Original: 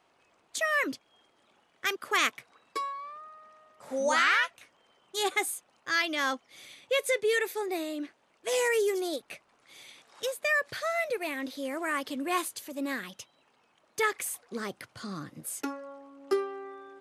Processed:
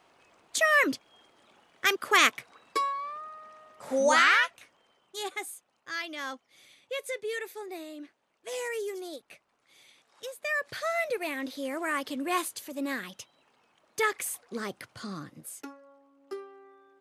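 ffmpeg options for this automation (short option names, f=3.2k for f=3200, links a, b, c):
-af "volume=13dB,afade=t=out:st=3.88:d=1.42:silence=0.237137,afade=t=in:st=10.3:d=0.58:silence=0.398107,afade=t=out:st=15.05:d=0.7:silence=0.251189"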